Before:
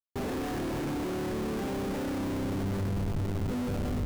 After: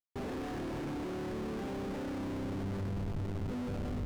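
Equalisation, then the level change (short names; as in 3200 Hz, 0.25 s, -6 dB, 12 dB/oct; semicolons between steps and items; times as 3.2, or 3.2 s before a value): high shelf 8700 Hz -11.5 dB; -5.5 dB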